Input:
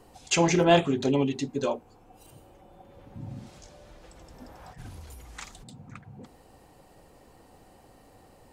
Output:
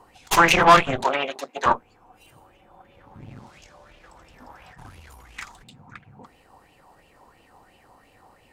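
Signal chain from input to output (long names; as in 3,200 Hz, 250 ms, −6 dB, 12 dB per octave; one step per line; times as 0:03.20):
harmonic generator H 4 −8 dB, 8 −14 dB, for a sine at −8.5 dBFS
0:01.04–0:01.66: Chebyshev high-pass filter 500 Hz, order 2
auto-filter bell 2.9 Hz 920–2,800 Hz +17 dB
level −3.5 dB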